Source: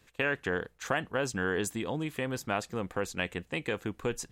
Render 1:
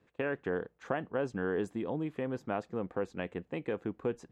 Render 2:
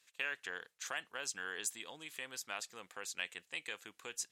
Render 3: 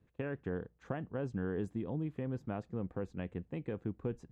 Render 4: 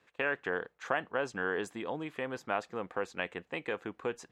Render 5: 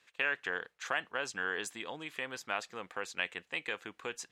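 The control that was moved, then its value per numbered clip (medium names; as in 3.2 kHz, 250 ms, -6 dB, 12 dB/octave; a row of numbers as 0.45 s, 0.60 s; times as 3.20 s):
band-pass filter, frequency: 350 Hz, 7.1 kHz, 120 Hz, 920 Hz, 2.5 kHz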